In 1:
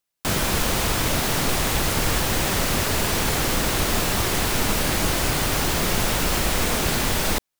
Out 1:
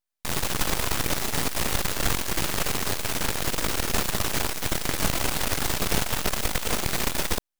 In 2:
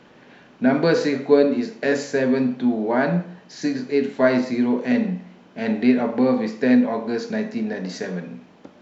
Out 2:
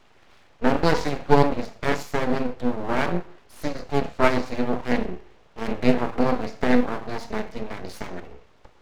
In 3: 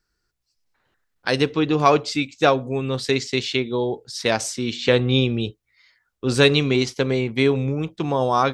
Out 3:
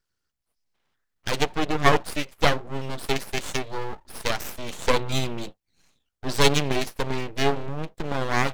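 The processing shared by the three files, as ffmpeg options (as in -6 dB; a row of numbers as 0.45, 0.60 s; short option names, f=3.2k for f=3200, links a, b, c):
-af "aeval=exprs='0.841*(cos(1*acos(clip(val(0)/0.841,-1,1)))-cos(1*PI/2))+0.422*(cos(4*acos(clip(val(0)/0.841,-1,1)))-cos(4*PI/2))':c=same,aeval=exprs='abs(val(0))':c=same,volume=-4.5dB"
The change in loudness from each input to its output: -4.5, -4.0, -5.0 LU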